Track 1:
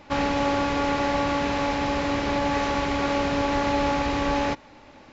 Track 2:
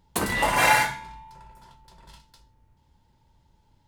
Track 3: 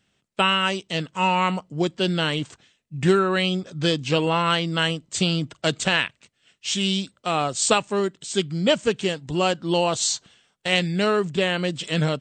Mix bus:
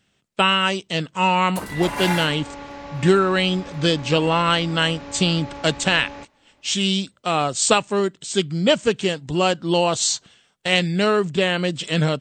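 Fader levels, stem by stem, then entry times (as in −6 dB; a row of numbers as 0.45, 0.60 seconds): −12.5, −6.5, +2.5 decibels; 1.70, 1.40, 0.00 seconds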